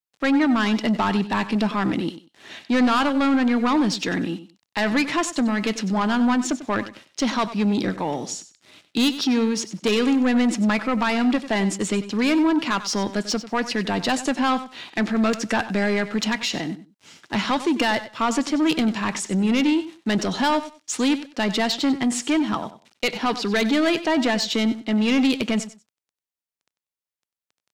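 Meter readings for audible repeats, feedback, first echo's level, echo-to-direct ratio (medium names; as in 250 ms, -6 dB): 2, 19%, -14.0 dB, -14.0 dB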